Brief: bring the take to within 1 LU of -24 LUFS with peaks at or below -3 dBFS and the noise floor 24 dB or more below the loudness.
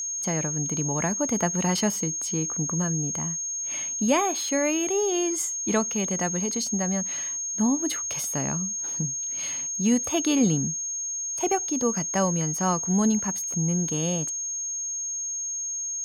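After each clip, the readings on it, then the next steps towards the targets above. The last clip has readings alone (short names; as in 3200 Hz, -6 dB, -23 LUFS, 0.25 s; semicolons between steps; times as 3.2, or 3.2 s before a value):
steady tone 6500 Hz; tone level -28 dBFS; loudness -25.0 LUFS; peak -9.5 dBFS; loudness target -24.0 LUFS
-> notch 6500 Hz, Q 30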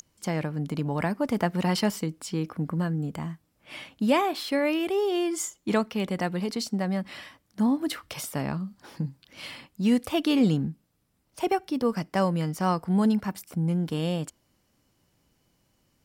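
steady tone none; loudness -27.5 LUFS; peak -10.5 dBFS; loudness target -24.0 LUFS
-> gain +3.5 dB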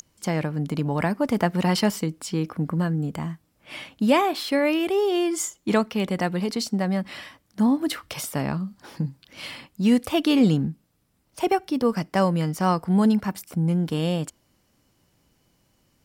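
loudness -24.0 LUFS; peak -7.0 dBFS; noise floor -67 dBFS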